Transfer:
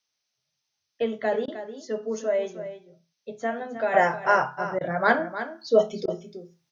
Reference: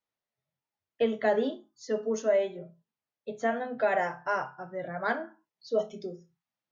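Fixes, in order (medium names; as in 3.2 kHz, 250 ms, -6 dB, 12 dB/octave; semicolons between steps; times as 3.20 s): interpolate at 1.46/4.79/6.06 s, 18 ms; expander -72 dBFS, range -21 dB; inverse comb 309 ms -11.5 dB; trim 0 dB, from 3.94 s -9 dB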